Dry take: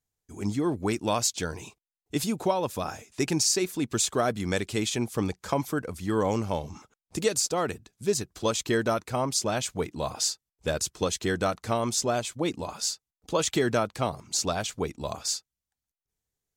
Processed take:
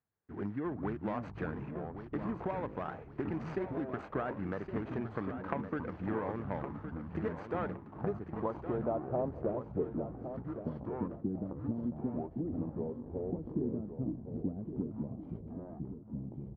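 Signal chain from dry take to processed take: median filter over 25 samples; HPF 100 Hz; compressor 6:1, threshold -35 dBFS, peak gain reduction 14 dB; low-pass sweep 1700 Hz -> 250 Hz, 7.76–10.48; echoes that change speed 0.231 s, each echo -6 st, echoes 3, each echo -6 dB; on a send: feedback echo 1.115 s, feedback 28%, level -10 dB

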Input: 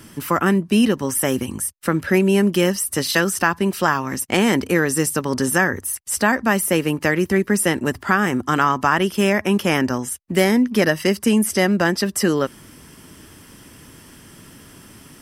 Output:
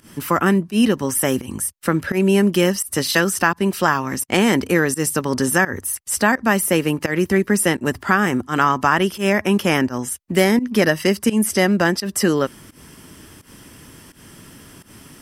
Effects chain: pump 85 bpm, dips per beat 1, -19 dB, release 0.136 s; gain +1 dB

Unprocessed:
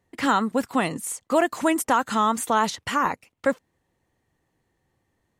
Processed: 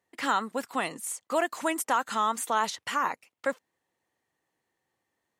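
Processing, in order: HPF 600 Hz 6 dB/oct; gain -3.5 dB

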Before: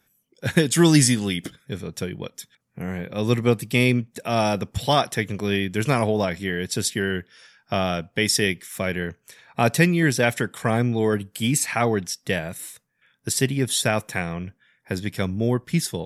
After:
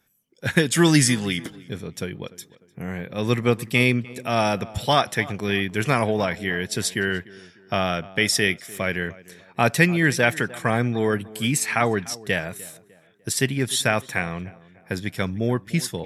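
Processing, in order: tape echo 0.299 s, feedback 44%, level -18 dB, low-pass 2200 Hz; dynamic EQ 1700 Hz, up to +5 dB, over -37 dBFS, Q 0.73; gain -1.5 dB

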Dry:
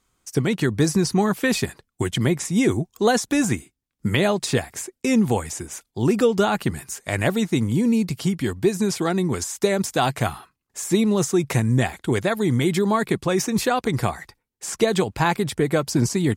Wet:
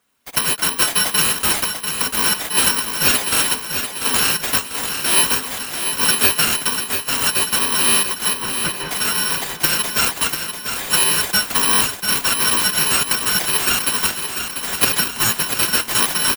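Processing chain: FFT order left unsorted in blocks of 256 samples; HPF 180 Hz 24 dB/oct; comb 4.2 ms, depth 46%; in parallel at -3.5 dB: sample-rate reducer 7000 Hz, jitter 0%; 8.33–8.91 on the sum: tape spacing loss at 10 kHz 27 dB; feedback echo 0.692 s, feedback 54%, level -7.5 dB

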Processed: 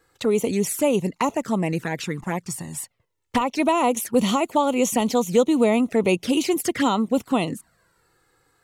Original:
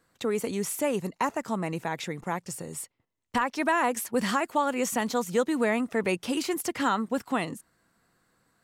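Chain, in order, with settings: envelope flanger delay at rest 2.4 ms, full sweep at -25 dBFS; gain +8.5 dB

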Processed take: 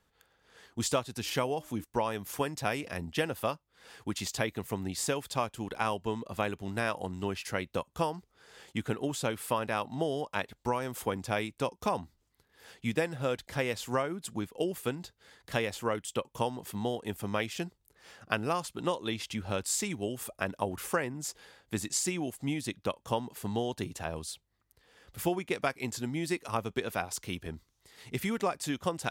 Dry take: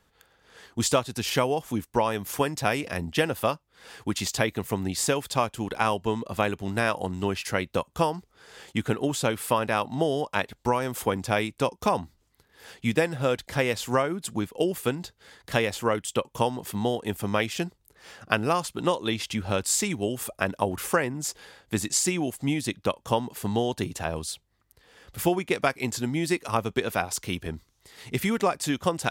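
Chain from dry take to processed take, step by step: 1.18–1.84 de-hum 305.7 Hz, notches 2; gain -6.5 dB

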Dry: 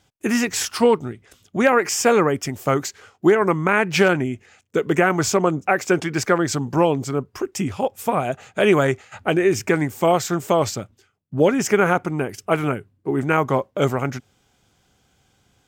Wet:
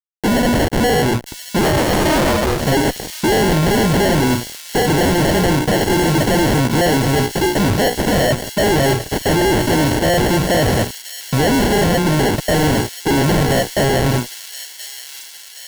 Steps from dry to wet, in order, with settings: notches 60/120/180/240/300/360/420/480 Hz; sample-and-hold 36×; 1.6–2.6 ring modulator 99 Hz -> 250 Hz; fuzz box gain 38 dB, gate -45 dBFS; thin delay 1.027 s, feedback 60%, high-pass 3900 Hz, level -4 dB

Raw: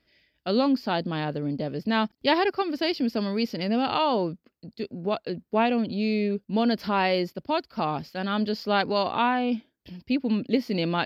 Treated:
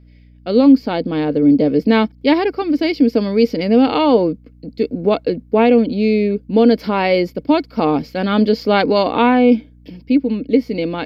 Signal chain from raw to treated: small resonant body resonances 290/460/2200 Hz, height 14 dB, ringing for 45 ms; AGC; hum 60 Hz, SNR 30 dB; gain -1 dB

